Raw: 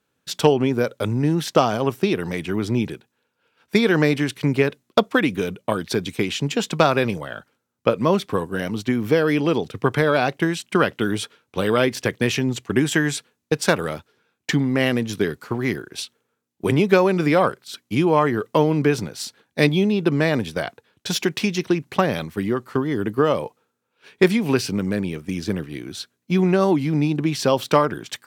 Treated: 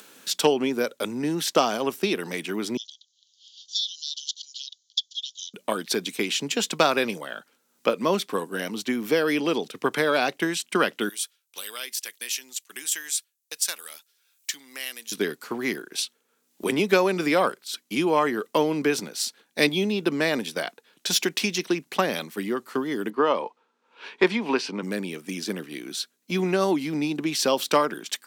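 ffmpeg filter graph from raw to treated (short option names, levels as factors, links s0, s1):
-filter_complex "[0:a]asettb=1/sr,asplit=3[s0][s1][s2];[s0]atrim=end=2.774[s3];[s1]atrim=start=2.77:end=5.54,asetpts=PTS-STARTPTS,afade=t=in:d=0.004:c=qsin,afade=t=out:st=2.766:d=0.004:c=qsin,asuperpass=centerf=4700:order=20:qfactor=1.2,highshelf=f=4700:g=5.5[s4];[s2]atrim=start=5.536[s5];[s3][s4]acrossfade=d=0.004:c1=hsin:c2=qsin[s6];[s6][s5]acrossfade=d=0.004:c1=qsin:c2=hsin,asettb=1/sr,asplit=3[s7][s8][s9];[s7]atrim=end=11.094[s10];[s8]atrim=start=11.09:end=15.12,asetpts=PTS-STARTPTS,afade=t=in:d=0.004:c=qsin,afade=t=out:st=4.026:d=0.004:c=qsin,agate=range=0.501:threshold=0.00447:ratio=16:release=100:detection=peak,aderivative[s11];[s9]atrim=start=15.116[s12];[s10][s11]acrossfade=d=0.004:c1=hsin:c2=qsin[s13];[s13][s12]acrossfade=d=0.004:c1=qsin:c2=hsin,asettb=1/sr,asplit=3[s14][s15][s16];[s14]atrim=end=23.104[s17];[s15]atrim=start=23.1:end=24.83,asetpts=PTS-STARTPTS,afade=t=in:d=0.004:c=qsin,afade=t=out:st=1.726:d=0.004:c=qsin,highpass=190,lowpass=3600,equalizer=f=960:t=o:w=0.42:g=8.5[s18];[s16]atrim=start=24.826[s19];[s17][s18]acrossfade=d=0.004:c1=hsin:c2=qsin[s20];[s20][s19]acrossfade=d=0.004:c1=qsin:c2=hsin,highpass=f=200:w=0.5412,highpass=f=200:w=1.3066,highshelf=f=2700:g=9.5,acompressor=mode=upward:threshold=0.0447:ratio=2.5,volume=0.596"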